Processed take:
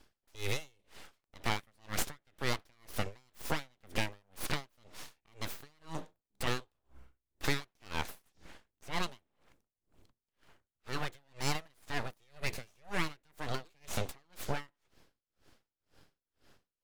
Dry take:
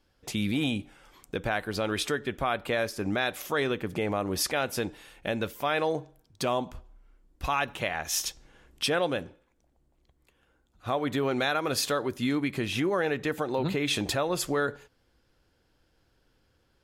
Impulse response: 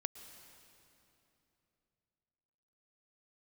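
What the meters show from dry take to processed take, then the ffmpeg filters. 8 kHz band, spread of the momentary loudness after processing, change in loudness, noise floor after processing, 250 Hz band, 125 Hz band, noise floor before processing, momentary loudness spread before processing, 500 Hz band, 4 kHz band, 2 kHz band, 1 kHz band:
−9.5 dB, 19 LU, −10.0 dB, below −85 dBFS, −14.0 dB, −6.5 dB, −70 dBFS, 7 LU, −15.0 dB, −8.5 dB, −8.5 dB, −10.0 dB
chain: -filter_complex "[0:a]acrossover=split=130|1500|4400[link_01][link_02][link_03][link_04];[link_01]acompressor=threshold=-54dB:ratio=4[link_05];[link_02]acompressor=threshold=-39dB:ratio=4[link_06];[link_03]acompressor=threshold=-41dB:ratio=4[link_07];[link_04]acompressor=threshold=-42dB:ratio=4[link_08];[link_05][link_06][link_07][link_08]amix=inputs=4:normalize=0,aeval=exprs='abs(val(0))':channel_layout=same,aeval=exprs='val(0)*pow(10,-39*(0.5-0.5*cos(2*PI*2*n/s))/20)':channel_layout=same,volume=8.5dB"

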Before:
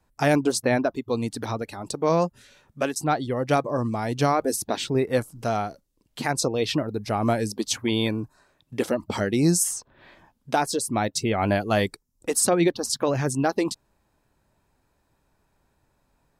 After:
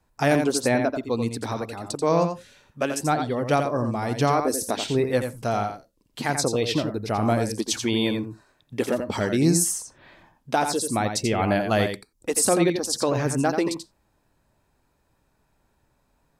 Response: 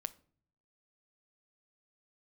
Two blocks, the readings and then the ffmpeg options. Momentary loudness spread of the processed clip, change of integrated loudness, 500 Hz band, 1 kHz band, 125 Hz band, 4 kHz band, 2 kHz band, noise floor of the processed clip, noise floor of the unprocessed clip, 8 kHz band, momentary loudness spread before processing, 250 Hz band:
10 LU, +0.5 dB, +1.0 dB, +1.0 dB, +1.0 dB, +1.0 dB, +1.0 dB, −69 dBFS, −70 dBFS, +1.0 dB, 9 LU, +0.5 dB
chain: -filter_complex "[0:a]asplit=2[link_01][link_02];[1:a]atrim=start_sample=2205,atrim=end_sample=4410,adelay=86[link_03];[link_02][link_03]afir=irnorm=-1:irlink=0,volume=-5dB[link_04];[link_01][link_04]amix=inputs=2:normalize=0"

